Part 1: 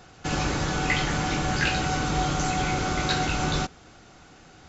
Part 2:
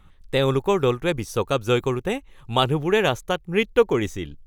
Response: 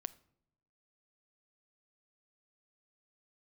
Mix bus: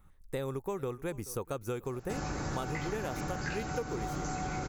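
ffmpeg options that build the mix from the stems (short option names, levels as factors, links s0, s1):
-filter_complex "[0:a]adelay=1850,volume=0.631[s0];[1:a]highshelf=f=9000:g=11.5,volume=0.376,asplit=2[s1][s2];[s2]volume=0.0668,aecho=0:1:430:1[s3];[s0][s1][s3]amix=inputs=3:normalize=0,equalizer=f=3200:w=1.6:g=-11.5,acompressor=threshold=0.0251:ratio=6"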